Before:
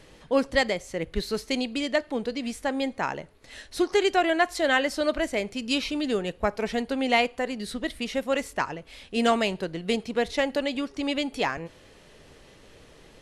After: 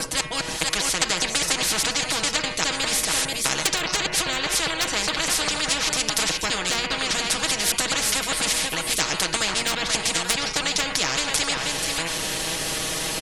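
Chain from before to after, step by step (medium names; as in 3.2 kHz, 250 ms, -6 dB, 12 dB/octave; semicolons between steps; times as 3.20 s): slices played last to first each 203 ms, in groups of 3; pre-emphasis filter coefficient 0.9; de-hum 120.8 Hz, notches 24; on a send: delay 483 ms -16.5 dB; on the sum: level rider gain up to 13 dB; tilt shelf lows +6.5 dB, about 820 Hz; low-pass that closes with the level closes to 2.2 kHz, closed at -21.5 dBFS; hard clipper -15 dBFS, distortion -34 dB; comb 6.3 ms, depth 85%; spectrum-flattening compressor 10:1; trim +8.5 dB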